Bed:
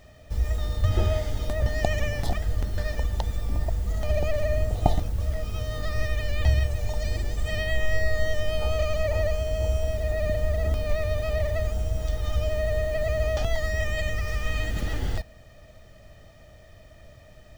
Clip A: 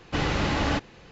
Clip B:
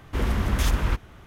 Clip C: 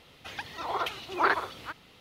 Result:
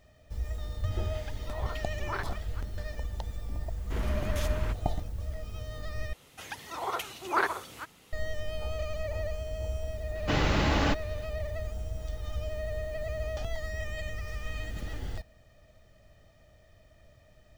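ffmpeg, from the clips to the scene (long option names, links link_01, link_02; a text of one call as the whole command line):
ffmpeg -i bed.wav -i cue0.wav -i cue1.wav -i cue2.wav -filter_complex "[3:a]asplit=2[link_01][link_02];[0:a]volume=-9dB[link_03];[link_02]highshelf=frequency=5600:width_type=q:width=1.5:gain=8.5[link_04];[link_03]asplit=2[link_05][link_06];[link_05]atrim=end=6.134[link_07];[link_04]atrim=end=2,asetpts=PTS-STARTPTS,volume=-2dB[link_08];[link_06]atrim=start=8.126[link_09];[link_01]atrim=end=2,asetpts=PTS-STARTPTS,volume=-11.5dB,afade=type=in:duration=0.004:curve=hsin,afade=type=out:start_time=1.996:duration=0.004:curve=hsin,adelay=890[link_10];[2:a]atrim=end=1.26,asetpts=PTS-STARTPTS,volume=-9dB,afade=type=in:duration=0.004:curve=hsin,afade=type=out:start_time=1.256:duration=0.004:curve=hsin,adelay=166257S[link_11];[1:a]atrim=end=1.11,asetpts=PTS-STARTPTS,volume=-1.5dB,afade=type=in:duration=0.004:curve=hsin,afade=type=out:start_time=1.106:duration=0.004:curve=hsin,adelay=10150[link_12];[link_07][link_08]acrossfade=duration=0.004:curve1=hsin:curve2=hsin[link_13];[link_13][link_09]acrossfade=duration=0.004:curve1=hsin:curve2=hsin[link_14];[link_14][link_10][link_11][link_12]amix=inputs=4:normalize=0" out.wav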